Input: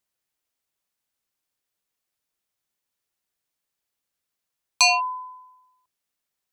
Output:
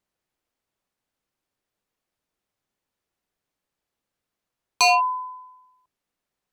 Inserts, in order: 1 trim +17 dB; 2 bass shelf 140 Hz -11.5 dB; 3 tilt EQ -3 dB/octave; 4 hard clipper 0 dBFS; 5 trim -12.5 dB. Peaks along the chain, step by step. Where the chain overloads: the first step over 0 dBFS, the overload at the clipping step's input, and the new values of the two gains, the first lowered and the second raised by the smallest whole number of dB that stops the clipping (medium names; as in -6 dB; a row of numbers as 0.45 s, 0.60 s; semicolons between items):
+7.0 dBFS, +7.5 dBFS, +5.5 dBFS, 0.0 dBFS, -12.5 dBFS; step 1, 5.5 dB; step 1 +11 dB, step 5 -6.5 dB